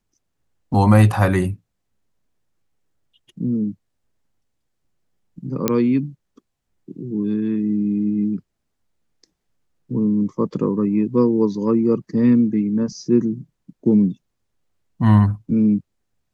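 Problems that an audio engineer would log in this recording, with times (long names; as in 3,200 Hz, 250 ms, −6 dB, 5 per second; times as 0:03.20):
0:05.68: click −3 dBFS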